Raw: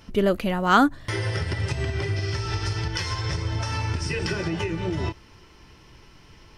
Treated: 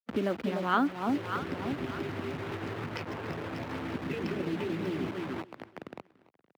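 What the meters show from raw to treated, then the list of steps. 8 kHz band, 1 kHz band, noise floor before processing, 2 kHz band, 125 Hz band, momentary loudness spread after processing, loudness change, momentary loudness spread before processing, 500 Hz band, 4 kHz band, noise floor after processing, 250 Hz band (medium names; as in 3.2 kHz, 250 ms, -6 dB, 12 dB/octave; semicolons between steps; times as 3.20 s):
-17.5 dB, -7.5 dB, -51 dBFS, -9.0 dB, -13.5 dB, 13 LU, -8.0 dB, 8 LU, -6.0 dB, -12.5 dB, -67 dBFS, -4.5 dB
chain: local Wiener filter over 41 samples; peaking EQ 250 Hz +7 dB 0.66 oct; echo whose repeats swap between lows and highs 296 ms, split 910 Hz, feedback 51%, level -6 dB; in parallel at -1.5 dB: compression 10:1, threshold -23 dBFS, peak gain reduction 14 dB; on the sum: bit crusher 5-bit; harmonic-percussive split harmonic -6 dB; high-pass 81 Hz; three-band isolator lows -15 dB, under 150 Hz, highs -18 dB, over 3.5 kHz; on a send: feedback delay 288 ms, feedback 47%, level -23.5 dB; on the sum: three bands compressed up and down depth 40%; trim -6 dB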